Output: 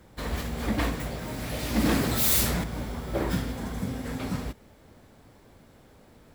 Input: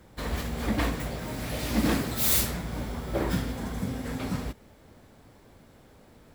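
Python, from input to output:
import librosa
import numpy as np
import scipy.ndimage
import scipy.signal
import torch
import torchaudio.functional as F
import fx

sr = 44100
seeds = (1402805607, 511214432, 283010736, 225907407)

y = fx.env_flatten(x, sr, amount_pct=50, at=(1.76, 2.64))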